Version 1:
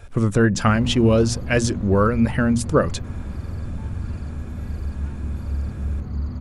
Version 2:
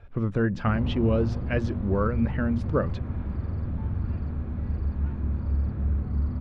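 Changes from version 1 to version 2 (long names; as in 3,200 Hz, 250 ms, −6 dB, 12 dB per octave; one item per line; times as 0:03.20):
speech −7.0 dB
master: add high-frequency loss of the air 320 metres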